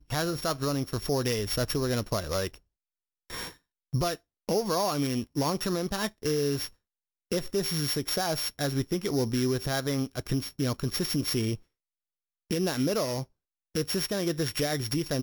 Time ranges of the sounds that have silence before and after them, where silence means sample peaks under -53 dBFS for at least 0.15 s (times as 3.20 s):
3.30–3.57 s
3.93–4.17 s
4.48–6.73 s
7.31–11.62 s
12.50–13.26 s